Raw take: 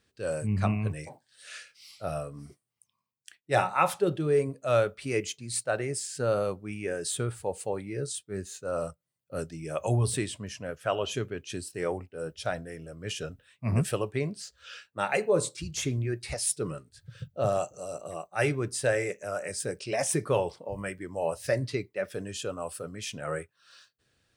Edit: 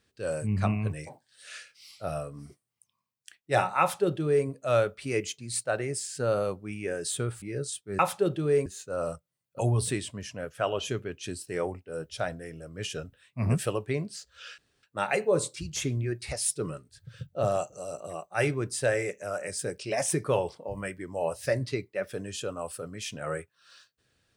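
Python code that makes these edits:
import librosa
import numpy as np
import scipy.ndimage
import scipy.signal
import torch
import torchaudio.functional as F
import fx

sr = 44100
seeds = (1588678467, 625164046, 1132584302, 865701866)

y = fx.edit(x, sr, fx.duplicate(start_s=3.8, length_s=0.67, to_s=8.41),
    fx.cut(start_s=7.42, length_s=0.42),
    fx.cut(start_s=9.34, length_s=0.51),
    fx.insert_room_tone(at_s=14.84, length_s=0.25), tone=tone)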